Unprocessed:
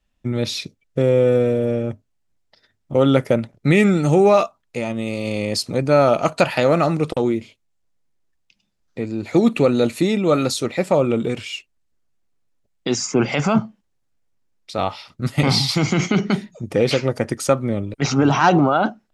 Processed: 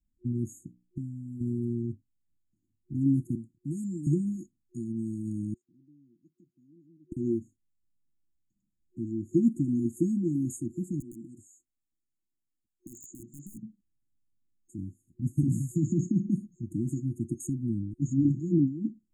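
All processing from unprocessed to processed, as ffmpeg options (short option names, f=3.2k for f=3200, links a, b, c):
-filter_complex "[0:a]asettb=1/sr,asplit=3[a][b][c];[a]atrim=end=0.604[d];[b]atrim=start=0.6:end=1.41,asetpts=PTS-STARTPTS,afade=t=in:d=0.004:c=qsin,afade=t=out:st=0.806:d=0.004:c=qsin,bandreject=f=60:t=h:w=6,bandreject=f=120:t=h:w=6,bandreject=f=180:t=h:w=6,bandreject=f=240:t=h:w=6,bandreject=f=300:t=h:w=6,acompressor=threshold=-19dB:ratio=10:attack=3.2:release=140:knee=1:detection=peak[e];[c]atrim=start=1.406[f];[d][e]acrossfade=d=0.004:c1=hsin:c2=qsin[g];[g][f]acrossfade=d=0.004:c1=qsin:c2=hsin,asettb=1/sr,asplit=3[h][i][j];[h]atrim=end=3.354[k];[i]atrim=start=3.35:end=4.07,asetpts=PTS-STARTPTS,afade=t=in:d=0.004:c=qsin,afade=t=out:st=0.716:d=0.004:c=qsin,acrossover=split=200|3000[l][m][n];[m]acompressor=threshold=-25dB:ratio=2:attack=3.2:release=140:knee=2.83:detection=peak[o];[l][o][n]amix=inputs=3:normalize=0,lowshelf=f=330:g=-11.5[p];[j]atrim=start=4.066[q];[k][p]acrossfade=d=0.004:c1=hsin:c2=qsin[r];[r][q]acrossfade=d=0.004:c1=qsin:c2=hsin,asettb=1/sr,asplit=3[s][t][u];[s]atrim=end=5.544[v];[t]atrim=start=5.54:end=7.12,asetpts=PTS-STARTPTS,afade=t=in:d=0.004:c=qsin,afade=t=out:st=1.576:d=0.004:c=qsin,lowpass=f=2.5k:w=0.5412,lowpass=f=2.5k:w=1.3066,aderivative[w];[u]atrim=start=7.116[x];[v][w]acrossfade=d=0.004:c1=hsin:c2=qsin[y];[y][x]acrossfade=d=0.004:c1=qsin:c2=hsin,asettb=1/sr,asplit=3[z][aa][ab];[z]atrim=end=11.004[ac];[aa]atrim=start=11:end=13.63,asetpts=PTS-STARTPTS,afade=t=in:d=0.004:c=qsin,afade=t=out:st=2.626:d=0.004:c=qsin,bass=f=250:g=-11,treble=f=4k:g=2,aeval=exprs='(mod(5.01*val(0)+1,2)-1)/5.01':c=same,acompressor=threshold=-31dB:ratio=4:attack=3.2:release=140:knee=1:detection=peak[ad];[ab]atrim=start=13.626[ae];[ac][ad]acrossfade=d=0.004:c1=hsin:c2=qsin[af];[af][ae]acrossfade=d=0.004:c1=qsin:c2=hsin,afftfilt=real='re*(1-between(b*sr/4096,360,6500))':imag='im*(1-between(b*sr/4096,360,6500))':win_size=4096:overlap=0.75,highshelf=f=5.3k:g=-6.5,volume=-7dB"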